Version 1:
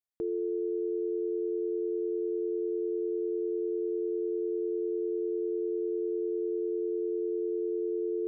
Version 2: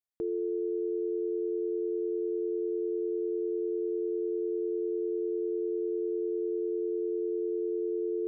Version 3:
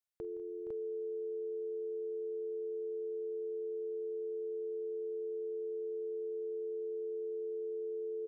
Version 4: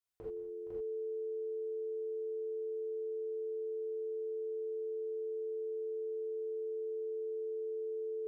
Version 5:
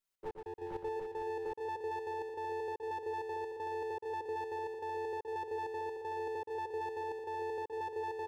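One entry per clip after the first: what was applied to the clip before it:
no audible change
peaking EQ 290 Hz -12.5 dB 1.2 oct; on a send: multi-tap echo 47/167/197/468/504 ms -18.5/-17.5/-18/-11.5/-3.5 dB; on the sum: trim -1.5 dB
gated-style reverb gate 110 ms flat, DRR -7.5 dB; trim -6 dB
comb filter that takes the minimum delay 5.2 ms; trance gate "xx.x..x.xx.xx..x" 196 bpm -60 dB; on a send: multi-tap echo 120/458/758 ms -6/-8/-5 dB; on the sum: trim +4 dB

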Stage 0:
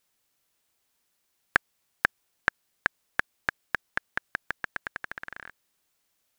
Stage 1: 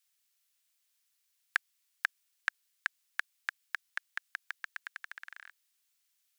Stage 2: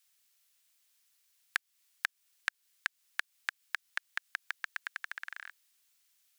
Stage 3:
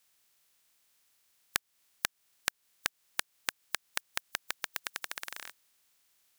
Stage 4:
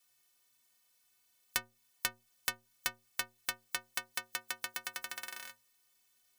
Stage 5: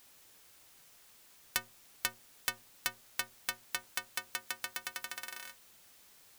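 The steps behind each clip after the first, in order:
Bessel high-pass 2.3 kHz, order 2; trim -1.5 dB
compression 2.5:1, threshold -37 dBFS, peak gain reduction 10 dB; trim +5 dB
spectral contrast reduction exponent 0.38; trim +1.5 dB
inharmonic resonator 110 Hz, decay 0.37 s, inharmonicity 0.03; trim +9 dB
added noise white -61 dBFS

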